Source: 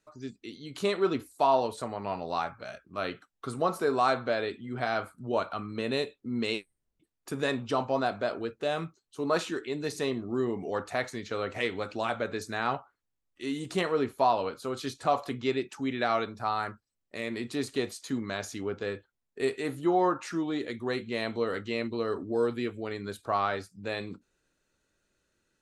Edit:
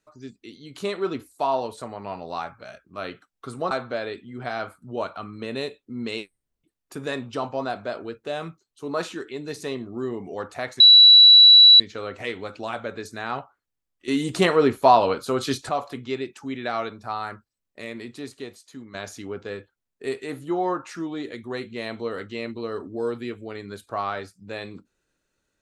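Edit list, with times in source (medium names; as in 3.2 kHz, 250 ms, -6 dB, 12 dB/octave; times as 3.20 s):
3.71–4.07 s: delete
11.16 s: add tone 3.93 kHz -7 dBFS 1.00 s
13.44–15.05 s: gain +9.5 dB
17.18–18.30 s: fade out quadratic, to -9 dB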